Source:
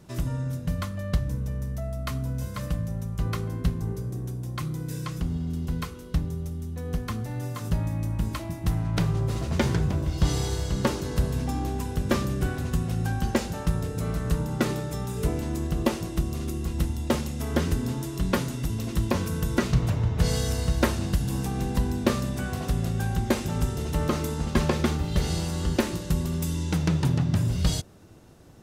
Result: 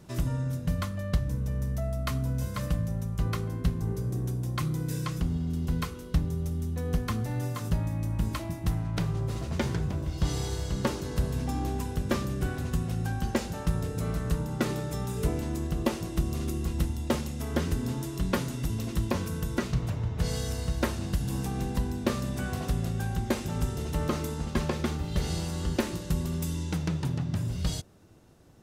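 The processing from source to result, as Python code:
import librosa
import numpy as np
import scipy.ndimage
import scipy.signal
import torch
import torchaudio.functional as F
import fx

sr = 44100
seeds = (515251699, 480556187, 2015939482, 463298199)

y = fx.rider(x, sr, range_db=10, speed_s=0.5)
y = y * 10.0 ** (-3.0 / 20.0)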